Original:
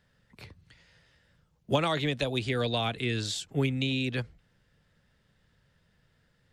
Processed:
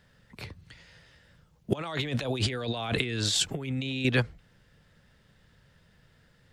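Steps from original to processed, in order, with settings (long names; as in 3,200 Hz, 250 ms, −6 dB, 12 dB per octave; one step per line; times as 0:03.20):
dynamic equaliser 1,100 Hz, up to +4 dB, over −46 dBFS, Q 0.78
0:01.73–0:04.05: compressor whose output falls as the input rises −38 dBFS, ratio −1
level +6.5 dB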